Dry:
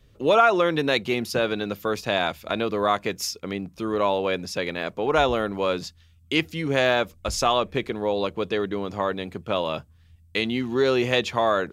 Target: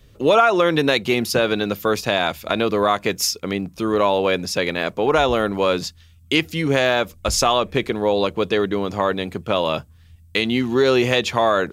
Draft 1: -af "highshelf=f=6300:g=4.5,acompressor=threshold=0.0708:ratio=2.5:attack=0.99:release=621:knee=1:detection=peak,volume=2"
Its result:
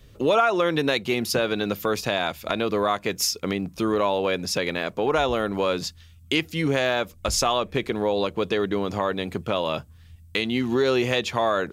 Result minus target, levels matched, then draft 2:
compression: peak gain reduction +5 dB
-af "highshelf=f=6300:g=4.5,acompressor=threshold=0.188:ratio=2.5:attack=0.99:release=621:knee=1:detection=peak,volume=2"

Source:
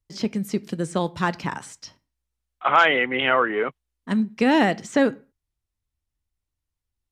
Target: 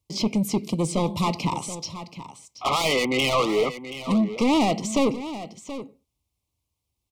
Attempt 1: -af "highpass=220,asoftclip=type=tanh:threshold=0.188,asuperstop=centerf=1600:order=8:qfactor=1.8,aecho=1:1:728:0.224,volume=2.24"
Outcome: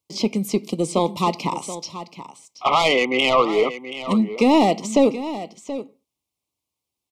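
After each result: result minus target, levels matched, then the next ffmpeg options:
125 Hz band -5.5 dB; saturation: distortion -6 dB
-af "highpass=72,asoftclip=type=tanh:threshold=0.188,asuperstop=centerf=1600:order=8:qfactor=1.8,aecho=1:1:728:0.224,volume=2.24"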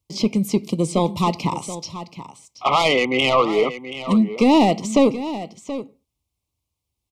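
saturation: distortion -7 dB
-af "highpass=72,asoftclip=type=tanh:threshold=0.0631,asuperstop=centerf=1600:order=8:qfactor=1.8,aecho=1:1:728:0.224,volume=2.24"

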